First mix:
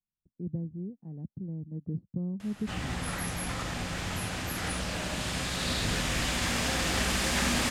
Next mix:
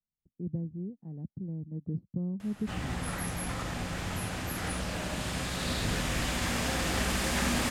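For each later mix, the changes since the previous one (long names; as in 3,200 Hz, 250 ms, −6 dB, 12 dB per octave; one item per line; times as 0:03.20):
background: add high-shelf EQ 2,500 Hz −7 dB
master: add high-shelf EQ 9,200 Hz +9.5 dB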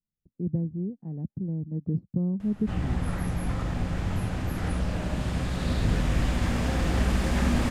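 speech +6.5 dB
background: add spectral tilt −2.5 dB per octave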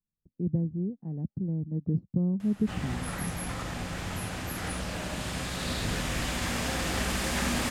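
background: add spectral tilt +2.5 dB per octave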